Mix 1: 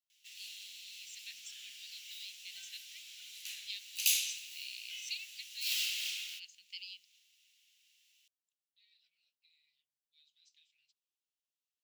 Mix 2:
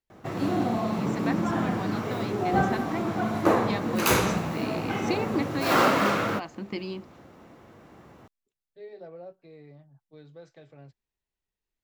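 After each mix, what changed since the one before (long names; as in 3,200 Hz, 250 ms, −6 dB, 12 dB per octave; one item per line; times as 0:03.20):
master: remove elliptic high-pass filter 2,800 Hz, stop band 60 dB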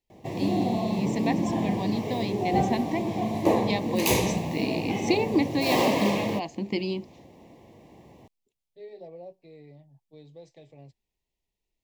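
first voice +5.5 dB
second voice: remove high-frequency loss of the air 51 metres
master: add Butterworth band-reject 1,400 Hz, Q 1.4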